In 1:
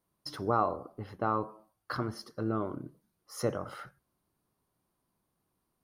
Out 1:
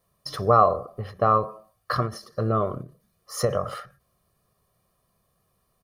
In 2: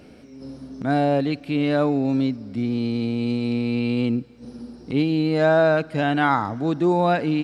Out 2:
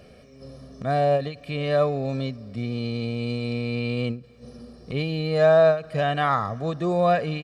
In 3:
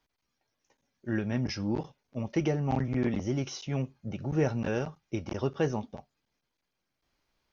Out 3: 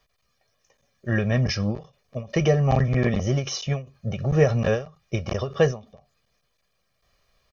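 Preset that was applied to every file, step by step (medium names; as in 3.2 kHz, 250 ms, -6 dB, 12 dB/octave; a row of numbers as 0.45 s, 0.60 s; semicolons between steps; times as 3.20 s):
comb 1.7 ms, depth 73%; endings held to a fixed fall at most 170 dB/s; normalise loudness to -24 LUFS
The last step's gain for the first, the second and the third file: +8.0 dB, -2.5 dB, +8.0 dB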